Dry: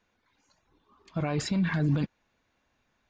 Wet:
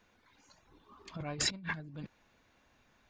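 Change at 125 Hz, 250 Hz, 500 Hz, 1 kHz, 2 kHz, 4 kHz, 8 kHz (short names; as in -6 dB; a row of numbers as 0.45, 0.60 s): -16.0, -16.5, -11.0, -7.0, -3.0, +3.5, +4.5 dB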